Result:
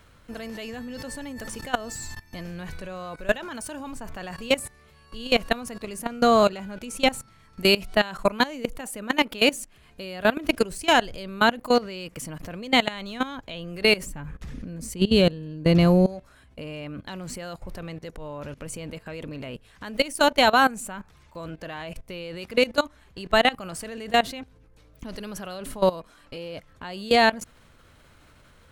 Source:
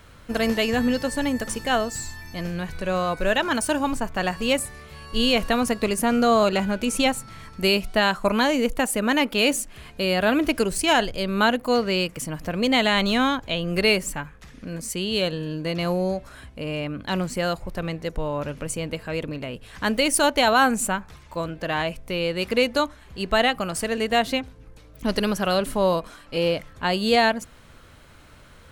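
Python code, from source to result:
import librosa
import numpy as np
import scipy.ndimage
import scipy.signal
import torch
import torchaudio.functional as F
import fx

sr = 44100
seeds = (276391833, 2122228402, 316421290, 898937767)

y = fx.low_shelf(x, sr, hz=400.0, db=12.0, at=(14.06, 16.06))
y = fx.level_steps(y, sr, step_db=19)
y = F.gain(torch.from_numpy(y), 2.5).numpy()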